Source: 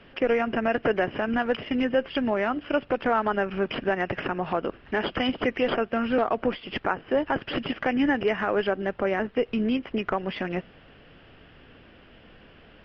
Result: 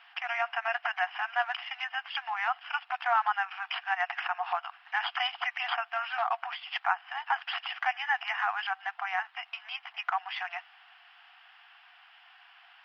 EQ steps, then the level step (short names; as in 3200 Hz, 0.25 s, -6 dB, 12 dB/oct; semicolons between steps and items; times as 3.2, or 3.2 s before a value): brick-wall FIR high-pass 690 Hz; 0.0 dB